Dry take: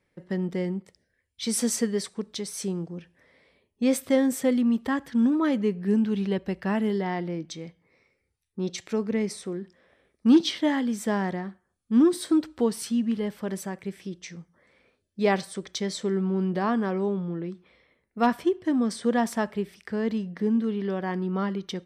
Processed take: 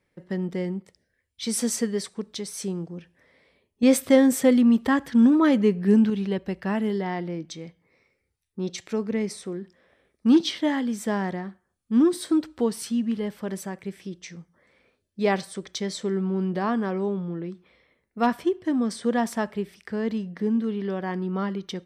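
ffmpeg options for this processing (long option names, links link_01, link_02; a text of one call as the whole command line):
ffmpeg -i in.wav -filter_complex "[0:a]asplit=3[link_01][link_02][link_03];[link_01]atrim=end=3.832[link_04];[link_02]atrim=start=3.828:end=6.102,asetpts=PTS-STARTPTS,volume=5dB[link_05];[link_03]atrim=start=6.098[link_06];[link_04][link_05]acrossfade=duration=0.004:curve1=hsin:curve2=hsin[link_07];[link_07][link_06]acrossfade=duration=0.004:curve1=hsin:curve2=hsin" out.wav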